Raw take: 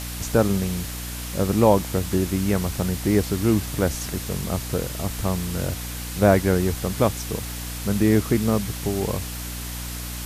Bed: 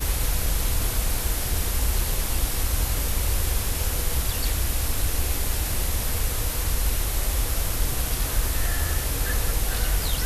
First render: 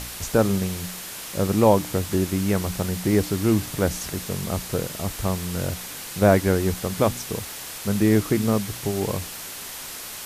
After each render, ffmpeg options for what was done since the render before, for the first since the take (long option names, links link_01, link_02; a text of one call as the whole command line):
ffmpeg -i in.wav -af "bandreject=frequency=60:width_type=h:width=4,bandreject=frequency=120:width_type=h:width=4,bandreject=frequency=180:width_type=h:width=4,bandreject=frequency=240:width_type=h:width=4,bandreject=frequency=300:width_type=h:width=4" out.wav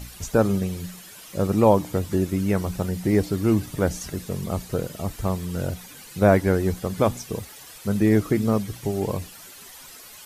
ffmpeg -i in.wav -af "afftdn=noise_reduction=12:noise_floor=-36" out.wav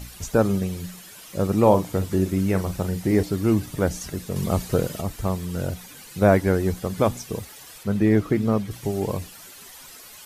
ffmpeg -i in.wav -filter_complex "[0:a]asettb=1/sr,asplit=3[link_01][link_02][link_03];[link_01]atrim=end=1.594[link_04];[link_02]atrim=start=1.59:end=3.23,asetpts=PTS-STARTPTS,afade=type=in:duration=0.004:curve=qsin,afade=type=out:start_time=1.636:duration=0.004:curve=qsin,asplit=2[link_05][link_06];[link_06]adelay=42,volume=-10.5dB[link_07];[link_05][link_07]amix=inputs=2:normalize=0,atrim=end_sample=72324[link_08];[link_03]atrim=start=3.226[link_09];[link_04][link_08]acrossfade=duration=0.004:curve1=hsin:curve2=qsin[link_10];[link_10][link_09]acrossfade=duration=0.004:curve1=qsin:curve2=hsin,asettb=1/sr,asplit=3[link_11][link_12][link_13];[link_11]atrim=end=7.834[link_14];[link_12]atrim=start=7.83:end=8.71,asetpts=PTS-STARTPTS,afade=type=in:duration=0.004:curve=qsin,afade=type=out:start_time=0.876:duration=0.004:curve=qsin,acrossover=split=4100[link_15][link_16];[link_16]acompressor=threshold=-50dB:ratio=4:attack=1:release=60[link_17];[link_15][link_17]amix=inputs=2:normalize=0[link_18];[link_13]atrim=start=8.706[link_19];[link_14][link_18]acrossfade=duration=0.004:curve1=hsin:curve2=qsin[link_20];[link_20][link_19]acrossfade=duration=0.004:curve1=qsin:curve2=hsin,asplit=3[link_21][link_22][link_23];[link_21]atrim=end=4.362[link_24];[link_22]atrim=start=4.358:end=5.012,asetpts=PTS-STARTPTS,volume=4.5dB[link_25];[link_23]atrim=start=5.008[link_26];[link_24][link_25]acrossfade=duration=0.004:curve1=hsin:curve2=hsin[link_27];[link_27][link_26]acrossfade=duration=0.004:curve1=hsin:curve2=hsin" out.wav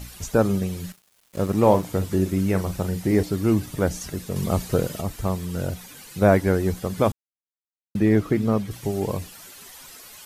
ffmpeg -i in.wav -filter_complex "[0:a]asettb=1/sr,asplit=3[link_01][link_02][link_03];[link_01]atrim=end=0.924[link_04];[link_02]atrim=start=0.92:end=1.83,asetpts=PTS-STARTPTS,afade=type=in:duration=0.004:curve=qsin,afade=type=out:start_time=0.906:duration=0.004:curve=qsin,aeval=exprs='sgn(val(0))*max(abs(val(0))-0.0126,0)':channel_layout=same[link_05];[link_03]atrim=start=1.826[link_06];[link_04][link_05]acrossfade=duration=0.004:curve1=hsin:curve2=qsin[link_07];[link_07][link_06]acrossfade=duration=0.004:curve1=qsin:curve2=hsin,asplit=3[link_08][link_09][link_10];[link_08]atrim=end=7.12,asetpts=PTS-STARTPTS,afade=type=out:start_time=7.116:duration=0.004:curve=hsin[link_11];[link_09]atrim=start=7.12:end=7.95,asetpts=PTS-STARTPTS,volume=0[link_12];[link_10]atrim=start=7.95,asetpts=PTS-STARTPTS,afade=type=in:duration=0.004:curve=hsin[link_13];[link_11][link_12][link_13]concat=n=3:v=0:a=1" out.wav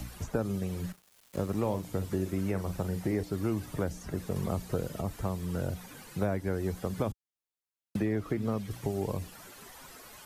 ffmpeg -i in.wav -filter_complex "[0:a]acrossover=split=80|420|1800[link_01][link_02][link_03][link_04];[link_01]acompressor=threshold=-43dB:ratio=4[link_05];[link_02]acompressor=threshold=-33dB:ratio=4[link_06];[link_03]acompressor=threshold=-37dB:ratio=4[link_07];[link_04]acompressor=threshold=-52dB:ratio=4[link_08];[link_05][link_06][link_07][link_08]amix=inputs=4:normalize=0" out.wav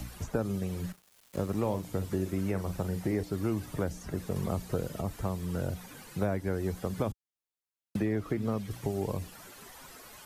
ffmpeg -i in.wav -af anull out.wav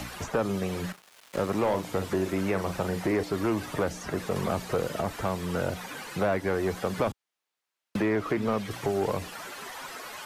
ffmpeg -i in.wav -filter_complex "[0:a]asplit=2[link_01][link_02];[link_02]highpass=frequency=720:poles=1,volume=20dB,asoftclip=type=tanh:threshold=-15.5dB[link_03];[link_01][link_03]amix=inputs=2:normalize=0,lowpass=frequency=2800:poles=1,volume=-6dB" out.wav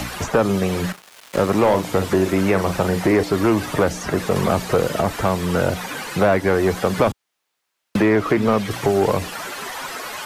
ffmpeg -i in.wav -af "volume=10dB" out.wav